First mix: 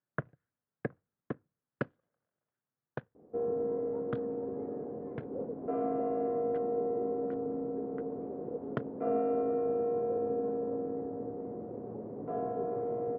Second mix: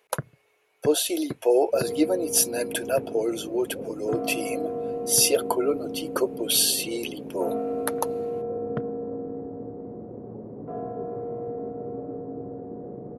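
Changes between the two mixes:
speech: unmuted; second sound: entry -1.60 s; master: add bass shelf 220 Hz +8 dB

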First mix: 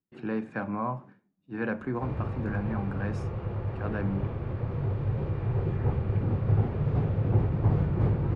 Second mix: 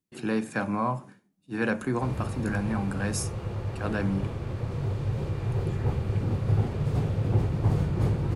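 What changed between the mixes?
speech +3.5 dB; master: remove low-pass 2.1 kHz 12 dB/octave

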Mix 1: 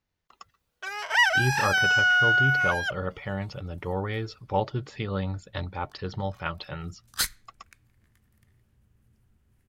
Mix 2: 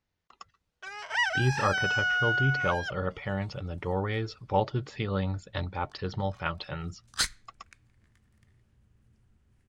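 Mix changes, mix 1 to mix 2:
first sound -6.5 dB; master: add Savitzky-Golay filter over 9 samples

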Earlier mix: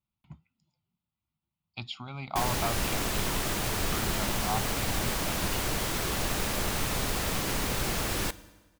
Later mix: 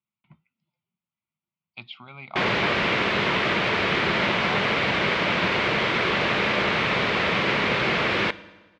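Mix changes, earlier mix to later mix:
background +11.0 dB; master: add cabinet simulation 190–3500 Hz, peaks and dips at 280 Hz -7 dB, 780 Hz -5 dB, 2.2 kHz +5 dB

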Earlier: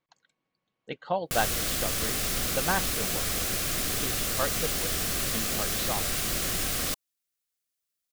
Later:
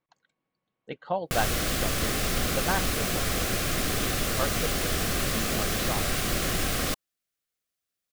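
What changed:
background +5.5 dB; master: add treble shelf 3.4 kHz -8.5 dB

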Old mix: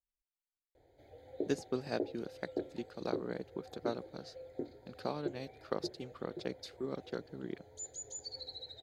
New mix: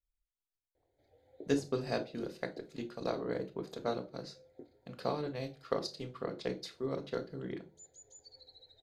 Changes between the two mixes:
background -11.5 dB; reverb: on, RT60 0.35 s

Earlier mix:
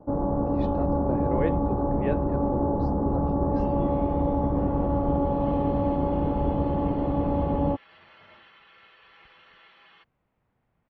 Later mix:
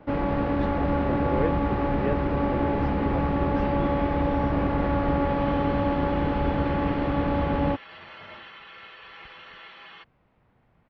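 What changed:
first sound: remove inverse Chebyshev low-pass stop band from 2.5 kHz, stop band 50 dB; second sound +9.5 dB

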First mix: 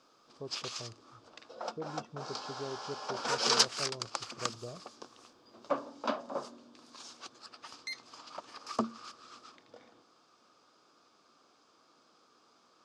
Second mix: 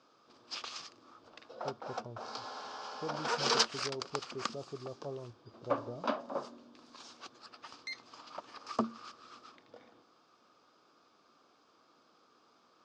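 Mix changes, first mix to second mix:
speech: entry +1.25 s; master: add distance through air 84 m

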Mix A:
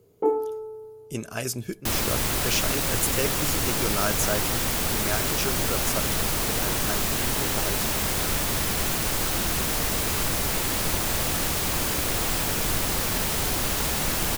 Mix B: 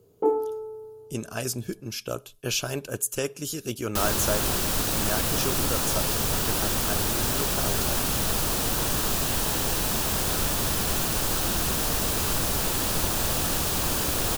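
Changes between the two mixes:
second sound: entry +2.10 s; master: add peaking EQ 2.1 kHz -7.5 dB 0.36 oct

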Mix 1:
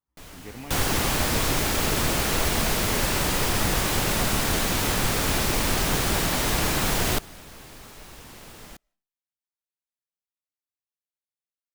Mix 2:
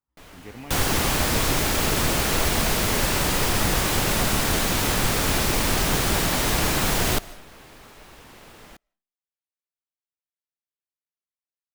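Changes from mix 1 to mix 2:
first sound: add tone controls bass -4 dB, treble -6 dB; second sound: send +10.0 dB

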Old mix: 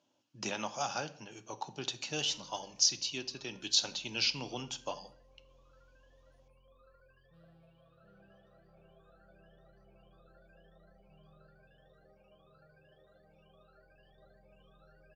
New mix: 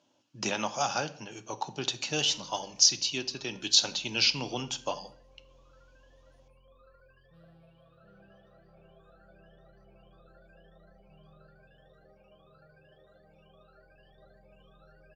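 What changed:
speech +6.0 dB; background +4.0 dB

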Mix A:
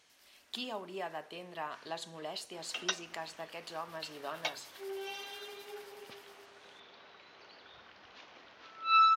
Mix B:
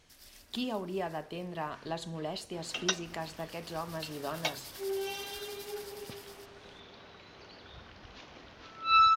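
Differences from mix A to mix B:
first sound +11.0 dB; second sound: add treble shelf 5.3 kHz +9.5 dB; master: remove high-pass 780 Hz 6 dB/octave

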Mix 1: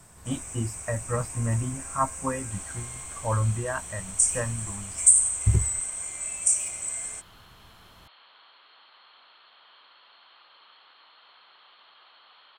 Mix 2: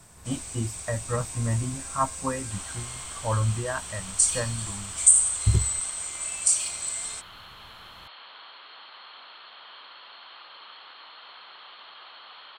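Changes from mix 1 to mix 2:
first sound: remove Butterworth band-stop 4 kHz, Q 1.1; second sound +9.0 dB

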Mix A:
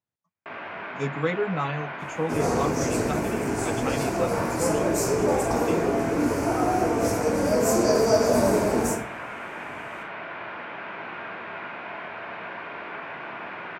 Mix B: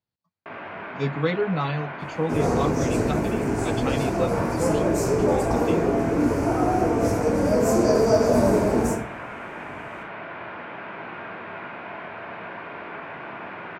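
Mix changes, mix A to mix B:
speech: add resonant low-pass 4.4 kHz, resonance Q 5.3; master: add tilt EQ -1.5 dB/octave

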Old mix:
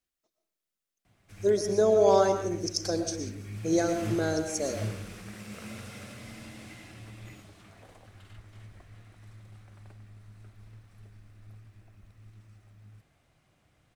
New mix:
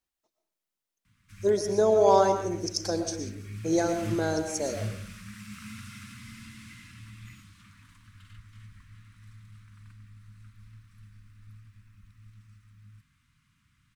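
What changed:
background: add inverse Chebyshev band-stop 370–810 Hz, stop band 40 dB; master: add peaking EQ 910 Hz +8 dB 0.35 oct

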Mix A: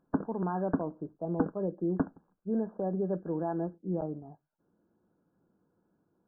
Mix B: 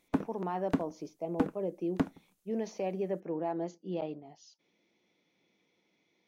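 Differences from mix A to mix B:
speech: add band-pass filter 640 Hz, Q 0.6; master: remove brick-wall FIR low-pass 1.7 kHz

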